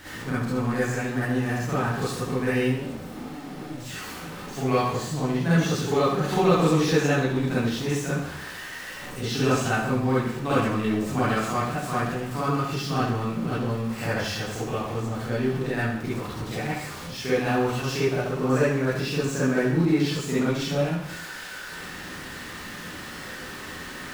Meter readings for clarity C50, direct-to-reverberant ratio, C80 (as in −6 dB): −5.5 dB, −10.0 dB, 4.0 dB